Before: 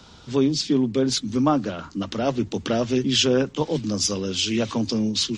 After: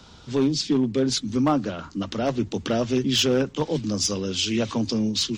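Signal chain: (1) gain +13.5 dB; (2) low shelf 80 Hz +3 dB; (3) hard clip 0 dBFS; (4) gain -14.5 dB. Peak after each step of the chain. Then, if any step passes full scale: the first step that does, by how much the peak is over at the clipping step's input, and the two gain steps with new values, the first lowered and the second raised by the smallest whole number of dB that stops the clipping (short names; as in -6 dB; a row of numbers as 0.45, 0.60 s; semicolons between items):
+7.5, +7.5, 0.0, -14.5 dBFS; step 1, 7.5 dB; step 1 +5.5 dB, step 4 -6.5 dB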